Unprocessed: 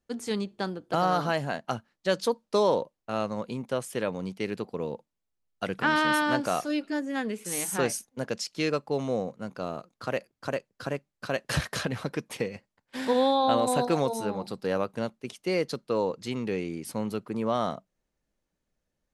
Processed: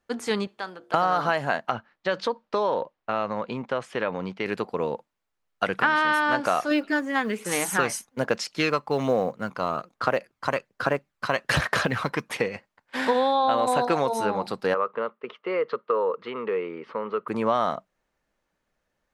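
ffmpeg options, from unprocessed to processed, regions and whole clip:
-filter_complex "[0:a]asettb=1/sr,asplit=3[a][b][c];[a]atrim=end=0.474[d];[b]atrim=start=0.47:end=0.94,asetpts=PTS-STARTPTS,afade=t=in:d=0.004:c=qsin,afade=t=out:st=0.466:d=0.004:c=qsin,lowshelf=f=420:g=-11.5,acompressor=threshold=-48dB:ratio=1.5:attack=3.2:release=140:knee=1:detection=peak,bandreject=f=70.03:t=h:w=4,bandreject=f=140.06:t=h:w=4,bandreject=f=210.09:t=h:w=4,bandreject=f=280.12:t=h:w=4,bandreject=f=350.15:t=h:w=4,bandreject=f=420.18:t=h:w=4,bandreject=f=490.21:t=h:w=4,bandreject=f=560.24:t=h:w=4,bandreject=f=630.27:t=h:w=4,bandreject=f=700.3:t=h:w=4[e];[c]atrim=start=0.936[f];[d][e]acrossfade=d=0.004:c1=hsin:c2=qsin[g];[g][f]acrossfade=d=0.004:c1=qsin:c2=hsin,asettb=1/sr,asplit=3[h][i][j];[h]atrim=end=1.694[k];[i]atrim=start=1.69:end=4.46,asetpts=PTS-STARTPTS,afade=t=in:d=0.004:c=qsin,afade=t=out:st=2.766:d=0.004:c=qsin,lowpass=4.2k,acompressor=threshold=-29dB:ratio=2.5:attack=3.2:release=140:knee=1:detection=peak[l];[j]atrim=start=4.456[m];[k][l]acrossfade=d=0.004:c1=hsin:c2=qsin[n];[n][m]acrossfade=d=0.004:c1=qsin:c2=hsin,asettb=1/sr,asplit=3[o][p][q];[o]atrim=end=6.714[r];[p]atrim=start=6.71:end=12.36,asetpts=PTS-STARTPTS,afade=t=in:d=0.004:c=qsin,afade=t=out:st=5.646:d=0.004:c=qsin,aphaser=in_gain=1:out_gain=1:delay=1:decay=0.36:speed=1.2:type=sinusoidal,acrusher=bits=9:mode=log:mix=0:aa=0.000001[s];[q]atrim=start=12.356[t];[r][s]acrossfade=d=0.004:c1=hsin:c2=qsin[u];[u][t]acrossfade=d=0.004:c1=qsin:c2=hsin,asettb=1/sr,asplit=3[v][w][x];[v]atrim=end=14.744[y];[w]atrim=start=14.74:end=17.28,asetpts=PTS-STARTPTS,afade=t=in:d=0.004:c=qsin,afade=t=out:st=2.536:d=0.004:c=qsin,acompressor=threshold=-31dB:ratio=2:attack=3.2:release=140:knee=1:detection=peak,highpass=280,equalizer=f=290:t=q:w=4:g=-8,equalizer=f=450:t=q:w=4:g=8,equalizer=f=750:t=q:w=4:g=-9,equalizer=f=1.2k:t=q:w=4:g=9,equalizer=f=1.6k:t=q:w=4:g=-4,equalizer=f=2.4k:t=q:w=4:g=-5,lowpass=f=2.8k:w=0.5412,lowpass=f=2.8k:w=1.3066[z];[x]atrim=start=17.276[aa];[y][z]acrossfade=d=0.004:c1=hsin:c2=qsin[ab];[ab][aa]acrossfade=d=0.004:c1=qsin:c2=hsin,equalizer=f=1.3k:t=o:w=2.9:g=11.5,acompressor=threshold=-18dB:ratio=6"

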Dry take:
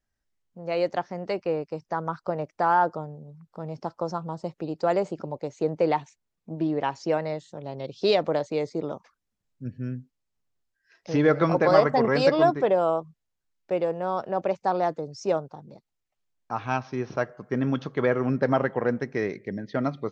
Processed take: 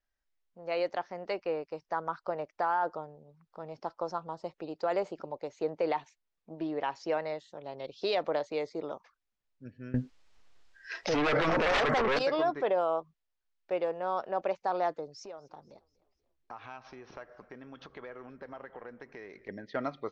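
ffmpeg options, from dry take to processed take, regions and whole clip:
-filter_complex "[0:a]asettb=1/sr,asplit=3[a][b][c];[a]atrim=end=9.944[d];[b]atrim=start=9.94:end=12.19,asetpts=PTS-STARTPTS,afade=t=in:d=0.004:c=qsin,afade=t=out:st=2.246:d=0.004:c=qsin,aeval=exprs='0.531*sin(PI/2*4.47*val(0)/0.531)':c=same,acontrast=50[e];[c]atrim=start=12.186[f];[d][e]acrossfade=d=0.004:c1=hsin:c2=qsin[g];[g][f]acrossfade=d=0.004:c1=qsin:c2=hsin,asettb=1/sr,asplit=3[h][i][j];[h]atrim=end=15.134[k];[i]atrim=start=15.13:end=19.49,asetpts=PTS-STARTPTS,afade=t=in:d=0.004:c=qsin,afade=t=out:st=4.356:d=0.004:c=qsin,acompressor=threshold=-36dB:ratio=6:attack=3.2:release=140:knee=1:detection=peak,asplit=5[l][m][n][o][p];[m]adelay=241,afreqshift=-72,volume=-23dB[q];[n]adelay=482,afreqshift=-144,volume=-28.4dB[r];[o]adelay=723,afreqshift=-216,volume=-33.7dB[s];[p]adelay=964,afreqshift=-288,volume=-39.1dB[t];[l][q][r][s][t]amix=inputs=5:normalize=0,atrim=end_sample=192276[u];[j]atrim=start=19.486[v];[k][u]acrossfade=d=0.004:c1=hsin:c2=qsin[w];[w][v]acrossfade=d=0.004:c1=qsin:c2=hsin,equalizer=f=140:t=o:w=2.3:g=-13.5,alimiter=limit=-18dB:level=0:latency=1:release=25,lowpass=4.9k,volume=-2dB"

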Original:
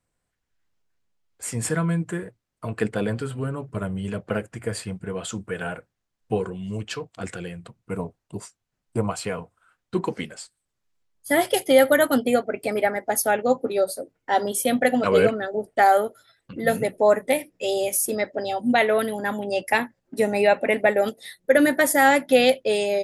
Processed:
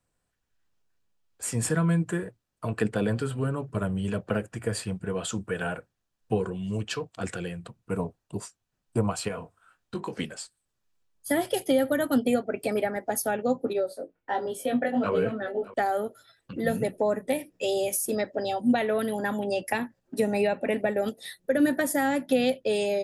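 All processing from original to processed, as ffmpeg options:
-filter_complex "[0:a]asettb=1/sr,asplit=3[a][b][c];[a]atrim=end=9.284[d];[b]atrim=start=9.28:end=10.13,asetpts=PTS-STARTPTS,afade=t=in:d=0.004:c=qsin,afade=t=out:st=0.846:d=0.004:c=qsin,acompressor=threshold=-33dB:ratio=2.5:attack=3.2:release=140:knee=1:detection=peak,asplit=2[e][f];[f]adelay=20,volume=-6dB[g];[e][g]amix=inputs=2:normalize=0,atrim=end_sample=37485[h];[c]atrim=start=10.126[i];[d][h]acrossfade=d=0.004:c1=hsin:c2=qsin[j];[j][i]acrossfade=d=0.004:c1=qsin:c2=hsin,asettb=1/sr,asplit=3[k][l][m];[k]atrim=end=13.734[n];[l]atrim=start=13.73:end=15.74,asetpts=PTS-STARTPTS,afade=t=in:d=0.004:c=qsin,afade=t=out:st=2.006:d=0.004:c=qsin,bass=f=250:g=-2,treble=f=4k:g=-12,flanger=delay=17:depth=4.4:speed=1.3,aecho=1:1:611:0.0944,atrim=end_sample=88641[o];[m]atrim=start=15.736[p];[n][o]acrossfade=d=0.004:c1=hsin:c2=qsin[q];[q][p]acrossfade=d=0.004:c1=qsin:c2=hsin,bandreject=f=2.1k:w=12,acrossover=split=320[r][s];[s]acompressor=threshold=-26dB:ratio=5[t];[r][t]amix=inputs=2:normalize=0"

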